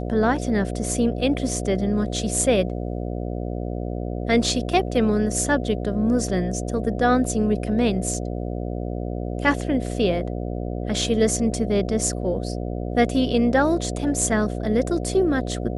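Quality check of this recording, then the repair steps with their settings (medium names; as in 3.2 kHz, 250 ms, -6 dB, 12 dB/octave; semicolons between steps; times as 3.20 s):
buzz 60 Hz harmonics 12 -28 dBFS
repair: de-hum 60 Hz, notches 12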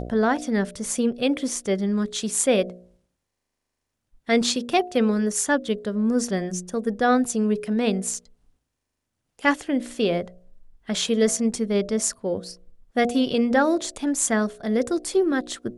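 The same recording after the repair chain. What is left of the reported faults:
nothing left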